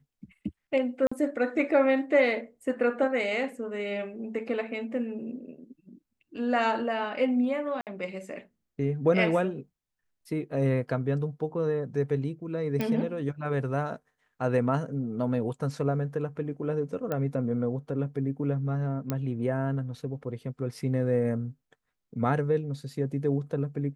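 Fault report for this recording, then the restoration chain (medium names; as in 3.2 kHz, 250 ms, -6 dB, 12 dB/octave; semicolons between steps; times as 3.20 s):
1.07–1.11 s: dropout 45 ms
7.81–7.87 s: dropout 58 ms
12.81 s: pop -16 dBFS
17.12 s: pop -18 dBFS
19.10 s: pop -15 dBFS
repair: de-click; interpolate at 1.07 s, 45 ms; interpolate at 7.81 s, 58 ms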